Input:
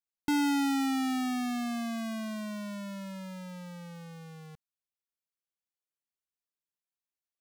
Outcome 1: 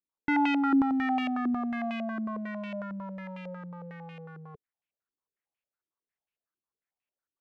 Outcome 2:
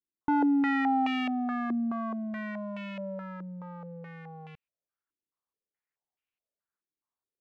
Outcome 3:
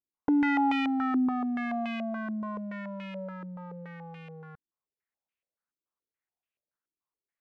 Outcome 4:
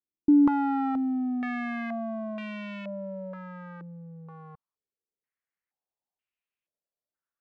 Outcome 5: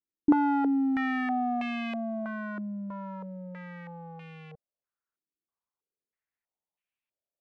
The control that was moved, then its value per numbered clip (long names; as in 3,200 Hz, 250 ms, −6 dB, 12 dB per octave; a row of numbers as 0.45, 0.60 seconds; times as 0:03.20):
low-pass on a step sequencer, speed: 11, 4.7, 7, 2.1, 3.1 Hertz